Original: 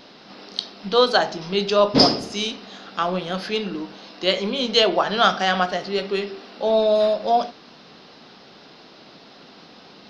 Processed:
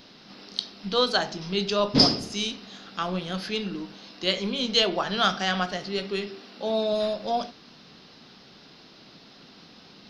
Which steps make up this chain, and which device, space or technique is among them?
smiley-face EQ (low-shelf EQ 180 Hz +6.5 dB; parametric band 640 Hz −5 dB 2 octaves; high-shelf EQ 6,300 Hz +6 dB)
0:06.27–0:06.93: high-pass filter 96 Hz
level −4 dB

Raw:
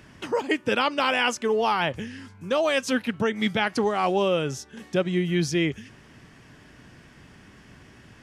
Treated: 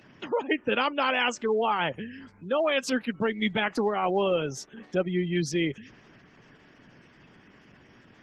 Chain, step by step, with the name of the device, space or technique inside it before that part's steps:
noise-suppressed video call (high-pass filter 140 Hz 12 dB per octave; gate on every frequency bin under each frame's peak −25 dB strong; level −2 dB; Opus 16 kbit/s 48,000 Hz)

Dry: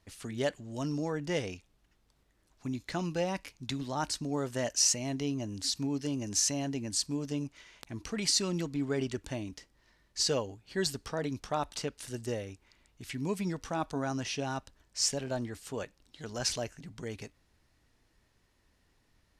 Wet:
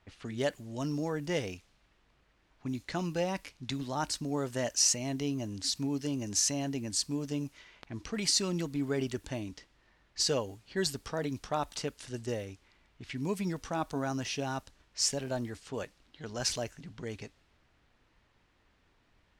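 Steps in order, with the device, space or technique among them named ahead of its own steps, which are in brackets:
cassette deck with a dynamic noise filter (white noise bed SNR 30 dB; low-pass that shuts in the quiet parts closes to 2,500 Hz, open at −31.5 dBFS)

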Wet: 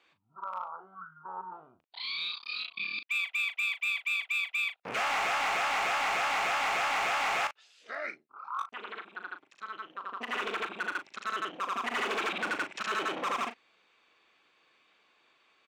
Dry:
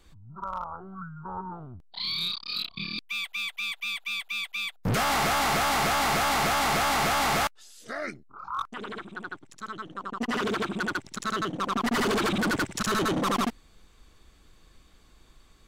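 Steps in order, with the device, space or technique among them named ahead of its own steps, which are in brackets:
megaphone (band-pass filter 530–3,500 Hz; parametric band 2,500 Hz +8 dB 0.45 octaves; hard clipping −22.5 dBFS, distortion −16 dB; double-tracking delay 38 ms −10 dB)
level −3.5 dB

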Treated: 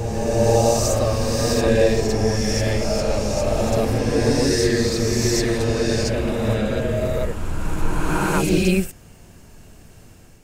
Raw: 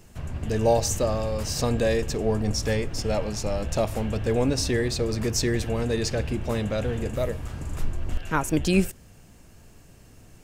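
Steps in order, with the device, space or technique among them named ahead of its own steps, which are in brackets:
reverse reverb (reversed playback; convolution reverb RT60 2.7 s, pre-delay 36 ms, DRR −4.5 dB; reversed playback)

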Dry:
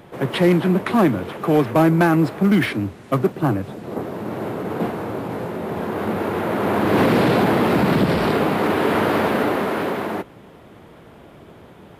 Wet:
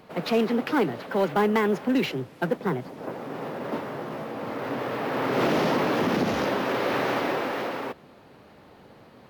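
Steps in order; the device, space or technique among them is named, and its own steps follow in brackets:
nightcore (speed change +29%)
level −7 dB

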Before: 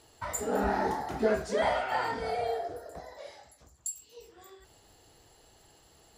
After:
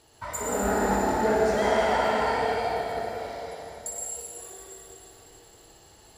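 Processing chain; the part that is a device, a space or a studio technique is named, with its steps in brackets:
tunnel (flutter between parallel walls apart 10.2 metres, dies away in 0.5 s; convolution reverb RT60 3.7 s, pre-delay 90 ms, DRR −3.5 dB)

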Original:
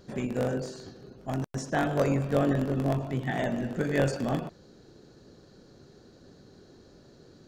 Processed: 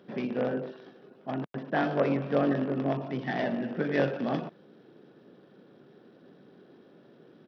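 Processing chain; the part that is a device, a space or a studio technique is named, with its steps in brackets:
0:00.71–0:01.26: low-shelf EQ 280 Hz −10 dB
Bluetooth headset (high-pass filter 160 Hz 24 dB per octave; downsampling to 8,000 Hz; SBC 64 kbit/s 44,100 Hz)

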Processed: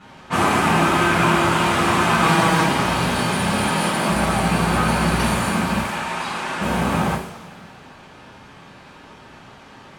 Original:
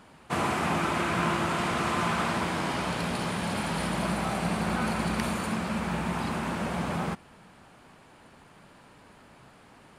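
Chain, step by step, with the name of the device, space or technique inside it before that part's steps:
0:05.80–0:06.60: high-pass filter 960 Hz 6 dB per octave
cassette deck with a dynamic noise filter (white noise bed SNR 24 dB; low-pass that shuts in the quiet parts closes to 2,900 Hz, open at −28.5 dBFS)
0:02.21–0:02.64: comb filter 6.2 ms, depth 89%
0:03.65–0:04.09: high-pass filter 180 Hz 12 dB per octave
coupled-rooms reverb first 0.41 s, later 2.1 s, from −18 dB, DRR −10 dB

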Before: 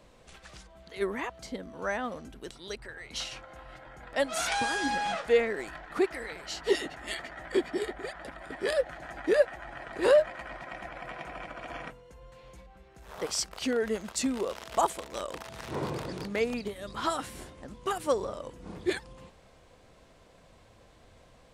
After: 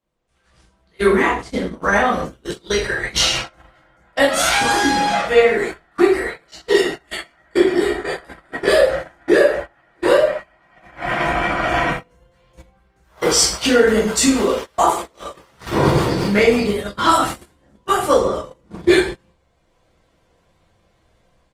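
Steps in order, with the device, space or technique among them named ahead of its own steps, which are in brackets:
speakerphone in a meeting room (convolution reverb RT60 0.50 s, pre-delay 9 ms, DRR −6.5 dB; far-end echo of a speakerphone 110 ms, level −22 dB; automatic gain control gain up to 16 dB; noise gate −22 dBFS, range −25 dB; level −1 dB; Opus 24 kbit/s 48,000 Hz)

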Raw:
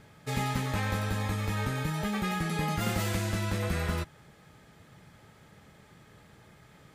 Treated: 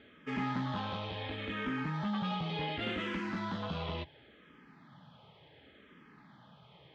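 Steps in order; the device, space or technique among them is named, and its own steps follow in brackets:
barber-pole phaser into a guitar amplifier (frequency shifter mixed with the dry sound −0.7 Hz; soft clipping −29.5 dBFS, distortion −15 dB; loudspeaker in its box 91–3,900 Hz, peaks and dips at 98 Hz −9 dB, 260 Hz +6 dB, 1,000 Hz +4 dB, 3,200 Hz +8 dB)

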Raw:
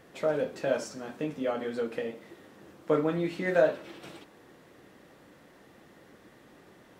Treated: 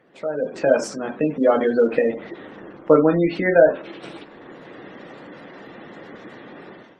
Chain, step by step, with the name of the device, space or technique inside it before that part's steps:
noise-suppressed video call (high-pass filter 150 Hz 12 dB per octave; gate on every frequency bin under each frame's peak −25 dB strong; automatic gain control gain up to 17 dB; level −1 dB; Opus 24 kbit/s 48,000 Hz)

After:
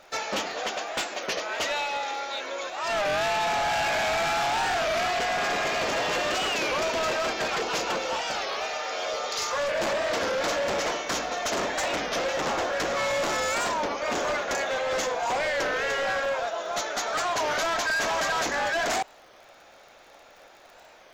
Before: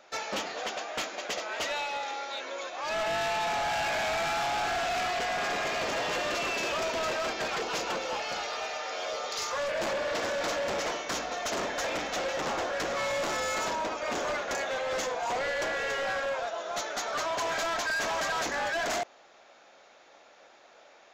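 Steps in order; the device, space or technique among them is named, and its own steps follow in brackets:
warped LP (wow of a warped record 33 1/3 rpm, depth 160 cents; surface crackle 47 per second −47 dBFS; pink noise bed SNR 41 dB)
level +4 dB

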